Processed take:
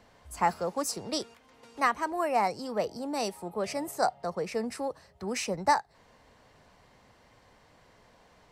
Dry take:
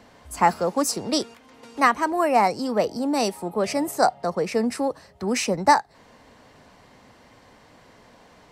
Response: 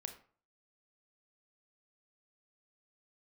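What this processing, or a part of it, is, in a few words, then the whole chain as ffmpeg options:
low shelf boost with a cut just above: -af "lowshelf=f=63:g=6.5,equalizer=f=260:t=o:w=0.66:g=-5,volume=0.422"

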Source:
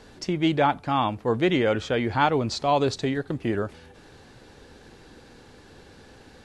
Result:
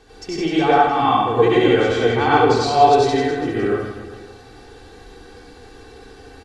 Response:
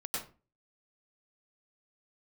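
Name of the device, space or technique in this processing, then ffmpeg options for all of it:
microphone above a desk: -filter_complex "[0:a]aecho=1:1:2.6:0.64,aecho=1:1:70|157.5|266.9|403.6|574.5:0.631|0.398|0.251|0.158|0.1[s0];[1:a]atrim=start_sample=2205[s1];[s0][s1]afir=irnorm=-1:irlink=0,volume=1.12"

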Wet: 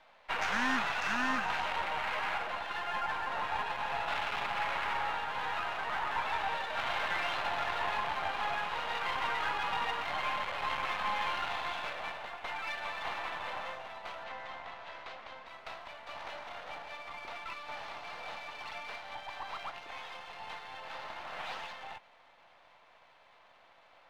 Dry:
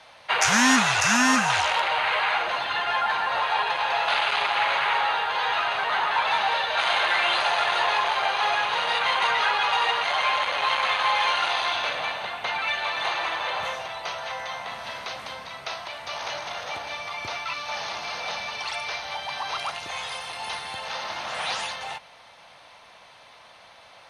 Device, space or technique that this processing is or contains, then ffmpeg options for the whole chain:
crystal radio: -filter_complex "[0:a]highpass=300,lowpass=2700,aeval=exprs='if(lt(val(0),0),0.447*val(0),val(0))':c=same,asettb=1/sr,asplit=3[s0][s1][s2];[s0]atrim=end=14.244[s3];[s1]atrim=start=14.24:end=15.47,asetpts=PTS-STARTPTS,afade=t=in:d=0.004:c=qsin,afade=t=out:st=1.226:d=0.004:c=qsin,lowpass=6500[s4];[s2]atrim=start=15.466[s5];[s3][s4]acrossfade=d=0.004:c1=hsin:c2=qsin[s6];[s6][s5]acrossfade=d=0.004:c1=qsin:c2=hsin,volume=0.422"

